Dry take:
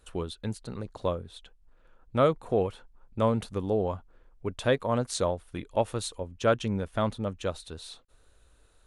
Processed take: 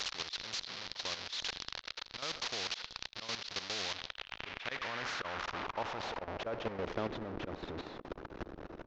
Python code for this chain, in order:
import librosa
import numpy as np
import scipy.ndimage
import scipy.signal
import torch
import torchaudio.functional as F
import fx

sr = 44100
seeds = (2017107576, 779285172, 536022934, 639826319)

y = fx.delta_mod(x, sr, bps=32000, step_db=-26.0)
y = fx.filter_sweep_bandpass(y, sr, from_hz=4200.0, to_hz=330.0, start_s=3.79, end_s=7.22, q=3.3)
y = fx.echo_feedback(y, sr, ms=80, feedback_pct=52, wet_db=-21.5)
y = fx.auto_swell(y, sr, attack_ms=140.0)
y = fx.high_shelf(y, sr, hz=3400.0, db=-10.0)
y = fx.level_steps(y, sr, step_db=13)
y = fx.low_shelf(y, sr, hz=71.0, db=10.0)
y = fx.spectral_comp(y, sr, ratio=2.0)
y = y * librosa.db_to_amplitude(8.0)